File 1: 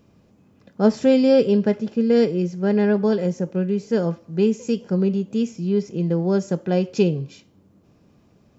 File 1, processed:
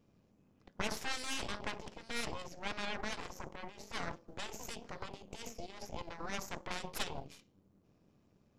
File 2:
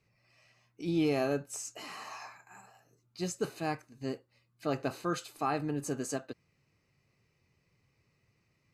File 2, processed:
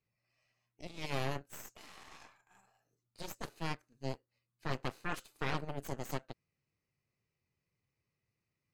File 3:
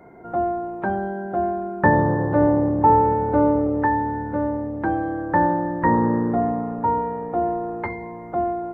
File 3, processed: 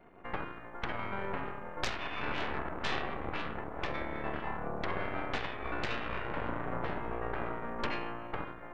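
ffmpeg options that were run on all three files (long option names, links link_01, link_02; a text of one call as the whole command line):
ffmpeg -i in.wav -af "asoftclip=type=tanh:threshold=-9.5dB,afftfilt=real='re*lt(hypot(re,im),0.224)':imag='im*lt(hypot(re,im),0.224)':win_size=1024:overlap=0.75,aeval=exprs='0.15*(cos(1*acos(clip(val(0)/0.15,-1,1)))-cos(1*PI/2))+0.0668*(cos(3*acos(clip(val(0)/0.15,-1,1)))-cos(3*PI/2))+0.075*(cos(4*acos(clip(val(0)/0.15,-1,1)))-cos(4*PI/2))+0.00841*(cos(8*acos(clip(val(0)/0.15,-1,1)))-cos(8*PI/2))':channel_layout=same,volume=-4dB" out.wav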